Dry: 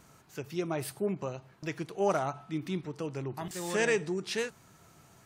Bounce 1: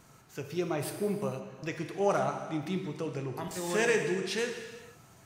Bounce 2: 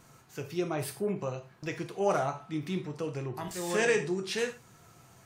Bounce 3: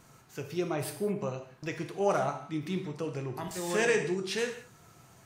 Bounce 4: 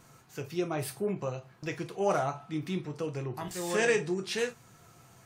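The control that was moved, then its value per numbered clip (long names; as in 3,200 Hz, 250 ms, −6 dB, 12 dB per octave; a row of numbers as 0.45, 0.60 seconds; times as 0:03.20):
reverb whose tail is shaped and stops, gate: 520, 130, 230, 80 milliseconds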